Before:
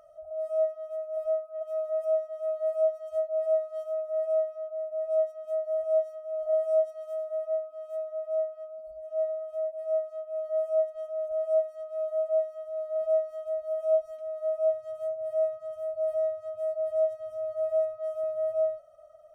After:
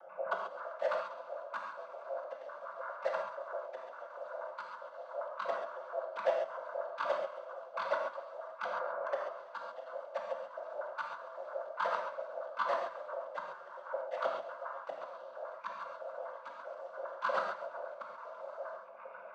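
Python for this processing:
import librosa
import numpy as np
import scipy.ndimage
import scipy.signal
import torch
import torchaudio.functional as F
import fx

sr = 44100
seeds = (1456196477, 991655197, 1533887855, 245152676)

p1 = fx.pitch_trill(x, sr, semitones=10.5, every_ms=80)
p2 = fx.quant_dither(p1, sr, seeds[0], bits=6, dither='none')
p3 = p1 + (p2 * 10.0 ** (-4.5 / 20.0))
p4 = fx.gate_flip(p3, sr, shuts_db=-27.0, range_db=-25)
p5 = fx.air_absorb(p4, sr, metres=240.0)
p6 = p5 + fx.echo_feedback(p5, sr, ms=134, feedback_pct=34, wet_db=-13.5, dry=0)
p7 = fx.noise_vocoder(p6, sr, seeds[1], bands=16)
p8 = scipy.signal.sosfilt(scipy.signal.butter(4, 200.0, 'highpass', fs=sr, output='sos'), p7)
p9 = fx.low_shelf(p8, sr, hz=390.0, db=7.0)
p10 = fx.rev_gated(p9, sr, seeds[2], gate_ms=160, shape='flat', drr_db=0.5)
y = p10 * 10.0 ** (2.5 / 20.0)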